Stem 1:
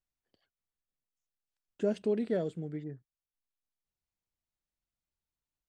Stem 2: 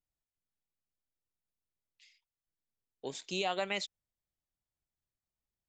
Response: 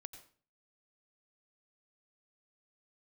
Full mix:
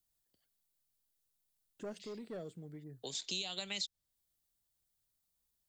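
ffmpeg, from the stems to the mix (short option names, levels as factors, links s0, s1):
-filter_complex "[0:a]asoftclip=type=tanh:threshold=0.0531,bass=f=250:g=5,treble=f=4000:g=8,volume=0.355[s0];[1:a]acrossover=split=190|3000[s1][s2][s3];[s2]acompressor=threshold=0.00447:ratio=6[s4];[s1][s4][s3]amix=inputs=3:normalize=0,aexciter=amount=2.1:drive=6.5:freq=3400,volume=1.26,asplit=2[s5][s6];[s6]apad=whole_len=250560[s7];[s0][s7]sidechaincompress=threshold=0.00224:ratio=8:attack=16:release=956[s8];[s8][s5]amix=inputs=2:normalize=0,acrossover=split=430|6500[s9][s10][s11];[s9]acompressor=threshold=0.00398:ratio=4[s12];[s10]acompressor=threshold=0.0158:ratio=4[s13];[s11]acompressor=threshold=0.00126:ratio=4[s14];[s12][s13][s14]amix=inputs=3:normalize=0"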